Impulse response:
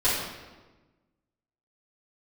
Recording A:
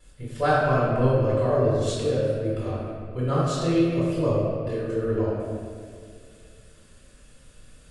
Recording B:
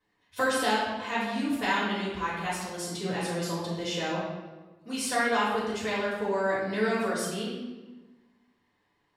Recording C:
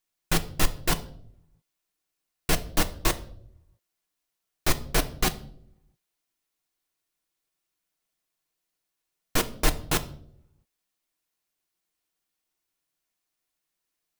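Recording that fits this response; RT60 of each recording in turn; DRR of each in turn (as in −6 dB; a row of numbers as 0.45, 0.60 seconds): B; 2.2, 1.2, 0.70 seconds; −9.5, −12.5, 6.0 decibels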